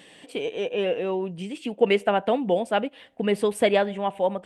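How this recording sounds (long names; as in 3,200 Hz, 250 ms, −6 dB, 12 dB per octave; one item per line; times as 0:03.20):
background noise floor −51 dBFS
spectral slope −3.5 dB per octave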